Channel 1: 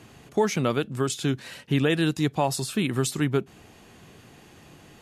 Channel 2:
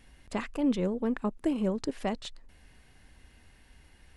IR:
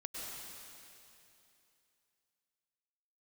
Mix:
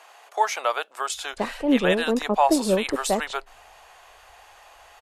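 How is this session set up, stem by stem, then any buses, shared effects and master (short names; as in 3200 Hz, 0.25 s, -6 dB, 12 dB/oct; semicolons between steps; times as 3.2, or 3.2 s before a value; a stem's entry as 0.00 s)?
+0.5 dB, 0.00 s, no send, HPF 760 Hz 24 dB/oct
-1.0 dB, 1.05 s, no send, three-band expander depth 70%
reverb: off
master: bell 600 Hz +11.5 dB 2.1 oct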